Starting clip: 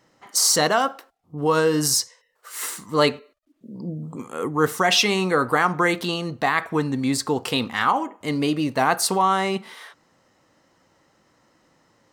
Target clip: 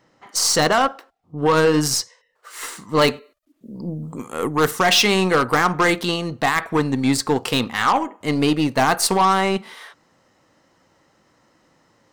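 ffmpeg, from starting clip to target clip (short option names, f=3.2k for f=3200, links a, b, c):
-af "asetnsamples=n=441:p=0,asendcmd='3.08 equalizer g 5.5;4.71 equalizer g -2',equalizer=f=15k:t=o:w=1.3:g=-10.5,aeval=exprs='0.562*(cos(1*acos(clip(val(0)/0.562,-1,1)))-cos(1*PI/2))+0.0316*(cos(4*acos(clip(val(0)/0.562,-1,1)))-cos(4*PI/2))+0.0794*(cos(6*acos(clip(val(0)/0.562,-1,1)))-cos(6*PI/2))+0.0355*(cos(7*acos(clip(val(0)/0.562,-1,1)))-cos(7*PI/2))+0.0501*(cos(8*acos(clip(val(0)/0.562,-1,1)))-cos(8*PI/2))':c=same,apsyclip=15.5dB,volume=-8.5dB"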